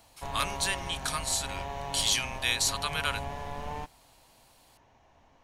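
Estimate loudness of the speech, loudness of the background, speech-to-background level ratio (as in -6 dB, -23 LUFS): -29.5 LUFS, -38.5 LUFS, 9.0 dB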